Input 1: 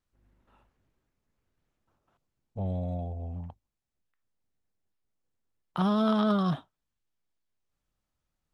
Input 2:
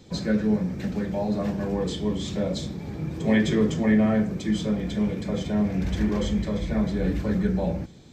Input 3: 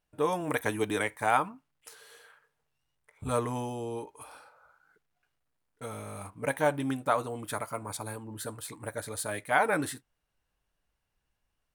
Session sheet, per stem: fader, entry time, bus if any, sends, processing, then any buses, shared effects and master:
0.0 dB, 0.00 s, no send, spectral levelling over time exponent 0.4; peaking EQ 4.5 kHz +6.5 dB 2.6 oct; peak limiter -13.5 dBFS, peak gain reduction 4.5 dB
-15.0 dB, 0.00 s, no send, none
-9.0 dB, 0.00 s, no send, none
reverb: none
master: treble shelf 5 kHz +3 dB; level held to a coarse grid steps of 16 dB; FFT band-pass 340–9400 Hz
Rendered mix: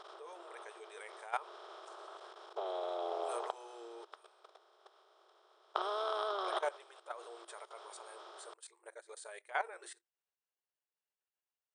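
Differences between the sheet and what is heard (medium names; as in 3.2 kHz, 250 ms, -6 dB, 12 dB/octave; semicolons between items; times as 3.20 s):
stem 1: missing peaking EQ 4.5 kHz +6.5 dB 2.6 oct; stem 2: muted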